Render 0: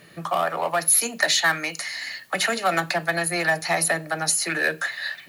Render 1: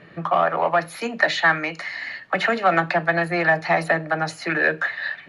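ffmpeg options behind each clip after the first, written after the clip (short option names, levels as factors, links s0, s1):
-af "lowpass=2200,volume=1.68"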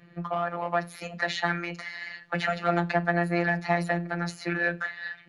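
-af "afftfilt=real='hypot(re,im)*cos(PI*b)':imag='0':win_size=1024:overlap=0.75,bass=f=250:g=6,treble=f=4000:g=2,dynaudnorm=f=430:g=5:m=3.76,volume=0.422"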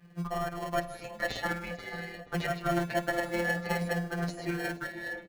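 -filter_complex "[0:a]asplit=2[s0][s1];[s1]acrusher=samples=36:mix=1:aa=0.000001,volume=0.631[s2];[s0][s2]amix=inputs=2:normalize=0,asplit=2[s3][s4];[s4]adelay=480,lowpass=f=1300:p=1,volume=0.355,asplit=2[s5][s6];[s6]adelay=480,lowpass=f=1300:p=1,volume=0.54,asplit=2[s7][s8];[s8]adelay=480,lowpass=f=1300:p=1,volume=0.54,asplit=2[s9][s10];[s10]adelay=480,lowpass=f=1300:p=1,volume=0.54,asplit=2[s11][s12];[s12]adelay=480,lowpass=f=1300:p=1,volume=0.54,asplit=2[s13][s14];[s14]adelay=480,lowpass=f=1300:p=1,volume=0.54[s15];[s3][s5][s7][s9][s11][s13][s15]amix=inputs=7:normalize=0,asplit=2[s16][s17];[s17]adelay=7.8,afreqshift=-0.51[s18];[s16][s18]amix=inputs=2:normalize=1,volume=0.668"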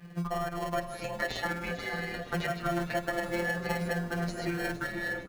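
-filter_complex "[0:a]acompressor=threshold=0.01:ratio=2.5,asplit=7[s0][s1][s2][s3][s4][s5][s6];[s1]adelay=459,afreqshift=-150,volume=0.2[s7];[s2]adelay=918,afreqshift=-300,volume=0.11[s8];[s3]adelay=1377,afreqshift=-450,volume=0.0603[s9];[s4]adelay=1836,afreqshift=-600,volume=0.0331[s10];[s5]adelay=2295,afreqshift=-750,volume=0.0182[s11];[s6]adelay=2754,afreqshift=-900,volume=0.01[s12];[s0][s7][s8][s9][s10][s11][s12]amix=inputs=7:normalize=0,volume=2.37"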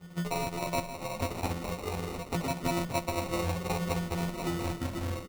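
-af "acrusher=samples=27:mix=1:aa=0.000001"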